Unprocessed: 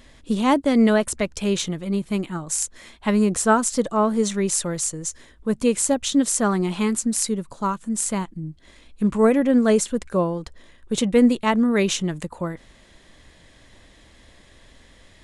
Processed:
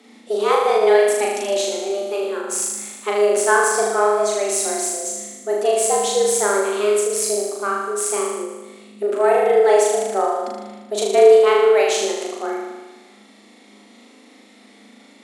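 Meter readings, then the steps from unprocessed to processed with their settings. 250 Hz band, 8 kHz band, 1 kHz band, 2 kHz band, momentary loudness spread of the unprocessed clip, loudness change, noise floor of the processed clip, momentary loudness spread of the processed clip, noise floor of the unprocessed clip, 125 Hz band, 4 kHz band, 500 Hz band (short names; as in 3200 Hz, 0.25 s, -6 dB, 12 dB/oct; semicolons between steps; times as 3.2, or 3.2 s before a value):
-12.5 dB, +3.0 dB, +6.0 dB, +6.0 dB, 12 LU, +3.5 dB, -48 dBFS, 13 LU, -52 dBFS, under -15 dB, +2.5 dB, +8.0 dB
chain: added harmonics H 6 -31 dB, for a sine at -4.5 dBFS; frequency shift +200 Hz; on a send: flutter echo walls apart 6.6 m, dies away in 1.2 s; on the sum: ending taper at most 100 dB/s; gain -1.5 dB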